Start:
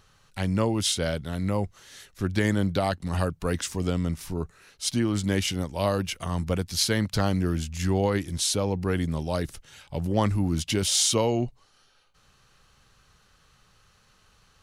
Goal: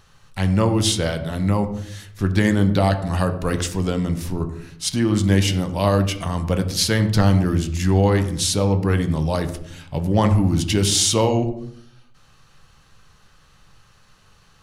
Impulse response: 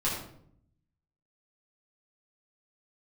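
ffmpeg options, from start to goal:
-filter_complex "[0:a]asplit=2[s0][s1];[1:a]atrim=start_sample=2205,highshelf=f=4200:g=-10.5[s2];[s1][s2]afir=irnorm=-1:irlink=0,volume=0.251[s3];[s0][s3]amix=inputs=2:normalize=0,volume=1.5"

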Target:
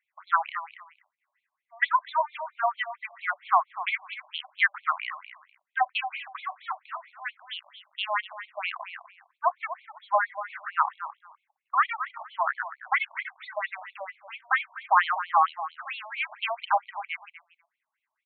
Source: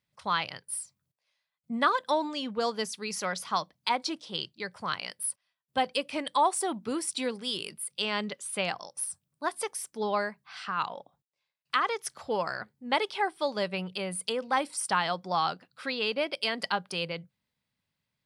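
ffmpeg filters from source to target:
-filter_complex "[0:a]highshelf=f=3100:t=q:w=1.5:g=-14,aecho=1:1:248|496:0.237|0.0403,asettb=1/sr,asplit=3[s0][s1][s2];[s0]atrim=end=4.444[s3];[s1]atrim=start=4.44:end=4.84,asetpts=PTS-STARTPTS,afade=t=in:d=0.004:c=qsin,afade=t=out:st=0.396:d=0.004:c=qsin,acontrast=85[s4];[s2]atrim=start=4.836[s5];[s3][s4]acrossfade=d=0.004:c1=hsin:c2=qsin[s6];[s6][s5]acrossfade=d=0.004:c1=qsin:c2=hsin,afftfilt=real='re*between(b*sr/1024,800*pow(3100/800,0.5+0.5*sin(2*PI*4.4*pts/sr))/1.41,800*pow(3100/800,0.5+0.5*sin(2*PI*4.4*pts/sr))*1.41)':imag='im*between(b*sr/1024,800*pow(3100/800,0.5+0.5*sin(2*PI*4.4*pts/sr))/1.41,800*pow(3100/800,0.5+0.5*sin(2*PI*4.4*pts/sr))*1.41)':win_size=1024:overlap=0.75,volume=2.37"

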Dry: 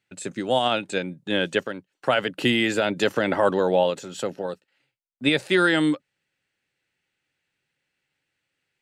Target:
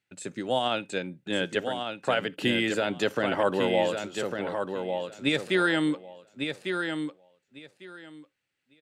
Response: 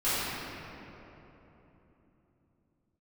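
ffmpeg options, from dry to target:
-filter_complex "[0:a]aecho=1:1:1150|2300|3450:0.501|0.0852|0.0145,asplit=2[s0][s1];[1:a]atrim=start_sample=2205,atrim=end_sample=3528[s2];[s1][s2]afir=irnorm=-1:irlink=0,volume=0.0355[s3];[s0][s3]amix=inputs=2:normalize=0,volume=0.562"

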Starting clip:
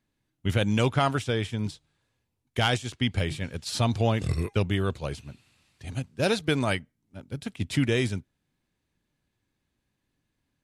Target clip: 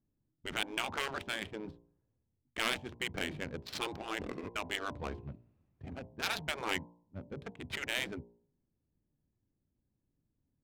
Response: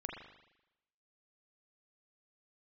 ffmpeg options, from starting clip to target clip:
-af "afftfilt=real='re*lt(hypot(re,im),0.141)':imag='im*lt(hypot(re,im),0.141)':win_size=1024:overlap=0.75,adynamicsmooth=sensitivity=5.5:basefreq=560,bandreject=f=58.37:t=h:w=4,bandreject=f=116.74:t=h:w=4,bandreject=f=175.11:t=h:w=4,bandreject=f=233.48:t=h:w=4,bandreject=f=291.85:t=h:w=4,bandreject=f=350.22:t=h:w=4,bandreject=f=408.59:t=h:w=4,bandreject=f=466.96:t=h:w=4,bandreject=f=525.33:t=h:w=4,bandreject=f=583.7:t=h:w=4,bandreject=f=642.07:t=h:w=4,bandreject=f=700.44:t=h:w=4,bandreject=f=758.81:t=h:w=4,bandreject=f=817.18:t=h:w=4,bandreject=f=875.55:t=h:w=4,bandreject=f=933.92:t=h:w=4,bandreject=f=992.29:t=h:w=4,bandreject=f=1050.66:t=h:w=4,volume=0.891"

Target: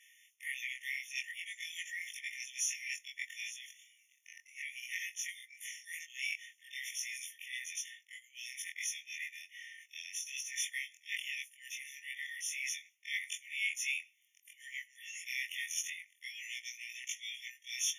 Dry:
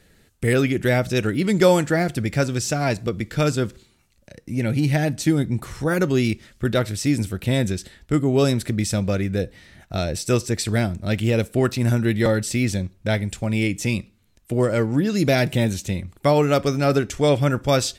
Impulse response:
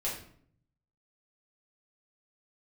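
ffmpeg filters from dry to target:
-af "afftfilt=real='re':imag='-im':win_size=2048:overlap=0.75,areverse,acompressor=threshold=0.0316:ratio=8,areverse,afftfilt=real='re*eq(mod(floor(b*sr/1024/1800),2),1)':imag='im*eq(mod(floor(b*sr/1024/1800),2),1)':win_size=1024:overlap=0.75,volume=1.88"

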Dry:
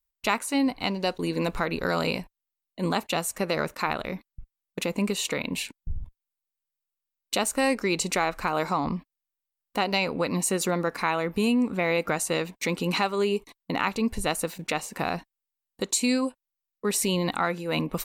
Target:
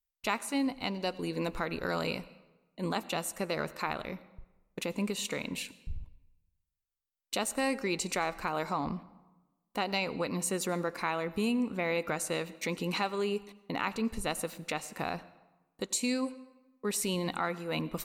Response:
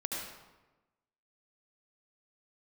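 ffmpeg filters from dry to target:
-filter_complex "[0:a]asplit=2[s0][s1];[1:a]atrim=start_sample=2205,adelay=14[s2];[s1][s2]afir=irnorm=-1:irlink=0,volume=0.106[s3];[s0][s3]amix=inputs=2:normalize=0,volume=0.473"

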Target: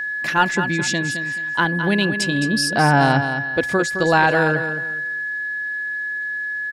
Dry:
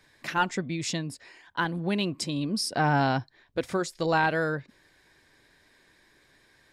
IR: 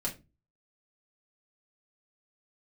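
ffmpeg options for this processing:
-af "aecho=1:1:215|430|645:0.355|0.0958|0.0259,aeval=exprs='val(0)+0.0282*sin(2*PI*1700*n/s)':c=same,volume=2.51"

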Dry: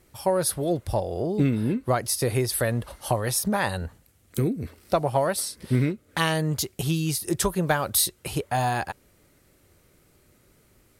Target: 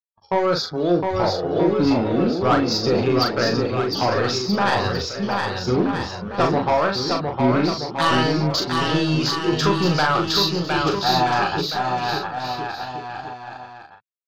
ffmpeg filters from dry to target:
-filter_complex "[0:a]aresample=16000,acrusher=bits=5:mix=0:aa=0.5,aresample=44100,afftdn=nr=36:nf=-42,highpass=110,equalizer=f=130:t=q:w=4:g=-10,equalizer=f=230:t=q:w=4:g=-5,equalizer=f=600:t=q:w=4:g=-5,equalizer=f=1300:t=q:w=4:g=7,equalizer=f=2000:t=q:w=4:g=-7,equalizer=f=4700:t=q:w=4:g=6,lowpass=f=4900:w=0.5412,lowpass=f=4900:w=1.3066,acontrast=52,agate=range=0.0224:threshold=0.0224:ratio=3:detection=peak,asoftclip=type=tanh:threshold=0.188,atempo=0.77,asplit=2[s0][s1];[s1]adelay=40,volume=0.562[s2];[s0][s2]amix=inputs=2:normalize=0,asplit=2[s3][s4];[s4]aecho=0:1:710|1278|1732|2096|2387:0.631|0.398|0.251|0.158|0.1[s5];[s3][s5]amix=inputs=2:normalize=0,volume=1.19"

